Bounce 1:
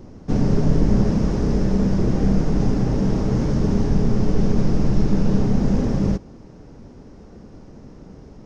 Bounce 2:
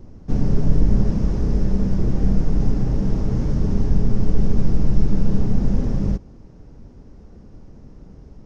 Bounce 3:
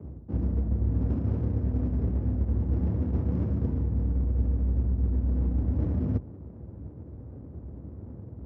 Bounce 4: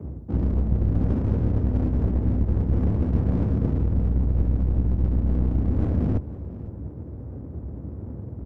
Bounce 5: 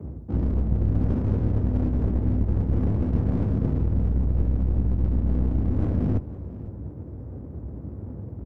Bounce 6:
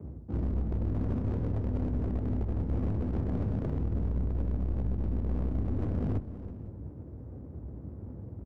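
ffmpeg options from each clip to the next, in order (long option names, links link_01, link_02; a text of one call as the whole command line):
ffmpeg -i in.wav -af "lowshelf=frequency=110:gain=11.5,volume=-6.5dB" out.wav
ffmpeg -i in.wav -af "areverse,acompressor=threshold=-24dB:ratio=6,areverse,afreqshift=56,adynamicsmooth=sensitivity=5:basefreq=730" out.wav
ffmpeg -i in.wav -af "aeval=exprs='clip(val(0),-1,0.0316)':channel_layout=same,aecho=1:1:502:0.126,volume=6.5dB" out.wav
ffmpeg -i in.wav -filter_complex "[0:a]asplit=2[link_01][link_02];[link_02]adelay=20,volume=-13.5dB[link_03];[link_01][link_03]amix=inputs=2:normalize=0,volume=-1dB" out.wav
ffmpeg -i in.wav -af "aeval=exprs='0.158*(abs(mod(val(0)/0.158+3,4)-2)-1)':channel_layout=same,aecho=1:1:330:0.178,volume=-6.5dB" out.wav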